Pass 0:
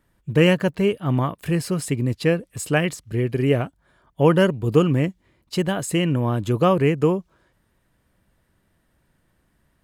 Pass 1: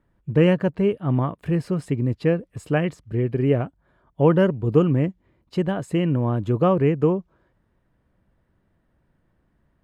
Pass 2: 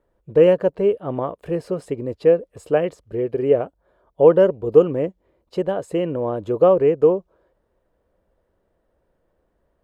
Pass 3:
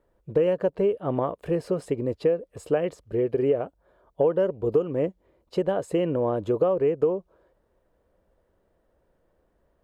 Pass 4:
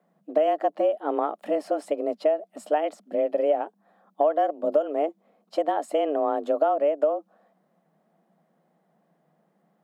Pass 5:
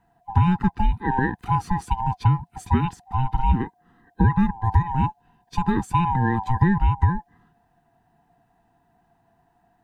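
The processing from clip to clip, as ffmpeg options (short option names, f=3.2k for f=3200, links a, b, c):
-af "lowpass=f=1.1k:p=1"
-af "equalizer=f=125:t=o:w=1:g=-10,equalizer=f=250:t=o:w=1:g=-5,equalizer=f=500:t=o:w=1:g=11,equalizer=f=2k:t=o:w=1:g=-4,volume=-1dB"
-af "acompressor=threshold=-19dB:ratio=6"
-af "afreqshift=150"
-af "afftfilt=real='real(if(lt(b,1008),b+24*(1-2*mod(floor(b/24),2)),b),0)':imag='imag(if(lt(b,1008),b+24*(1-2*mod(floor(b/24),2)),b),0)':win_size=2048:overlap=0.75,volume=4dB"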